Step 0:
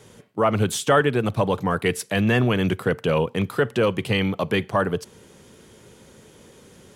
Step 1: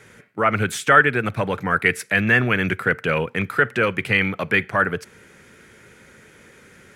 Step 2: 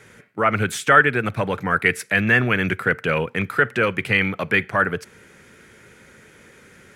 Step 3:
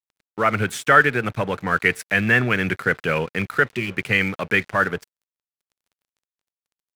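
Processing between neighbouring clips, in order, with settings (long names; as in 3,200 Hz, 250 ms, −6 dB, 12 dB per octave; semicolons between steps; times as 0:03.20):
flat-topped bell 1,800 Hz +12 dB 1.1 octaves; level −2 dB
no processing that can be heard
healed spectral selection 0:03.66–0:03.89, 400–1,800 Hz after; dead-zone distortion −39 dBFS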